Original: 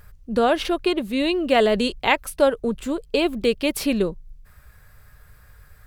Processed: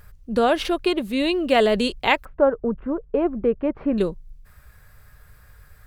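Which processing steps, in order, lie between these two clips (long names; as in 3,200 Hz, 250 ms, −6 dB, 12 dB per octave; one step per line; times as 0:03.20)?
0:02.25–0:03.98: low-pass filter 1,500 Hz 24 dB per octave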